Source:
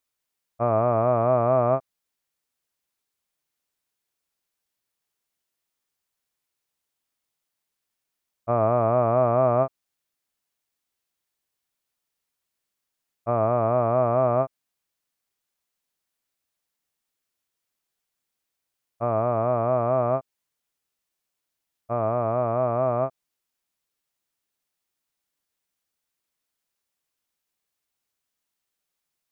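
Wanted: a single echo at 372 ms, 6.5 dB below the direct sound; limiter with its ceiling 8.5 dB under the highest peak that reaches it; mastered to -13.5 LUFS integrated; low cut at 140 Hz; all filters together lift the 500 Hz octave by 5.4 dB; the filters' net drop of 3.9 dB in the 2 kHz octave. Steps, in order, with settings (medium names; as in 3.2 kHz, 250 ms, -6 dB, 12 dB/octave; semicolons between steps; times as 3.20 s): high-pass 140 Hz; peaking EQ 500 Hz +8 dB; peaking EQ 2 kHz -6.5 dB; peak limiter -15.5 dBFS; delay 372 ms -6.5 dB; trim +11 dB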